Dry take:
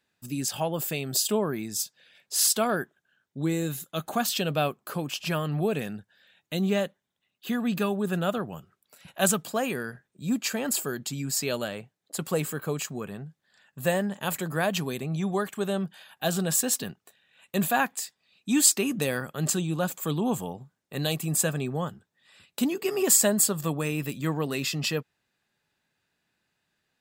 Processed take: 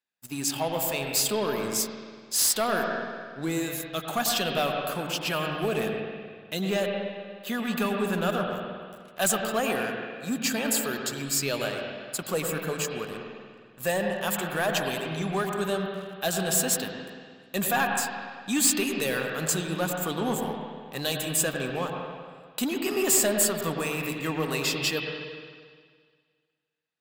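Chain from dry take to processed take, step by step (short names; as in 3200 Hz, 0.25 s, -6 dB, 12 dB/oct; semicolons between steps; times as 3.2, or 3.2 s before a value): low shelf 370 Hz -9 dB; notches 50/100/150 Hz; sample leveller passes 3; on a send: reverb RT60 1.8 s, pre-delay 77 ms, DRR 2 dB; on the sum: gain -8.5 dB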